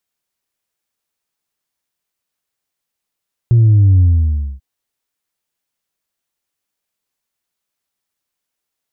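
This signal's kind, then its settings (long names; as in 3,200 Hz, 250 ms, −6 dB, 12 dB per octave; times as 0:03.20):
bass drop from 120 Hz, over 1.09 s, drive 1 dB, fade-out 0.60 s, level −6.5 dB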